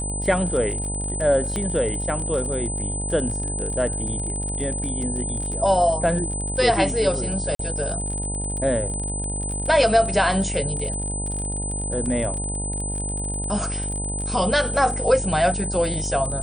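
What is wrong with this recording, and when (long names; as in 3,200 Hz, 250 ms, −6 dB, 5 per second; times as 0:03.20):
mains buzz 50 Hz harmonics 19 −29 dBFS
surface crackle 39 per second −29 dBFS
whistle 8,100 Hz −28 dBFS
0:01.56: click −13 dBFS
0:07.55–0:07.59: drop-out 43 ms
0:12.06: drop-out 2.9 ms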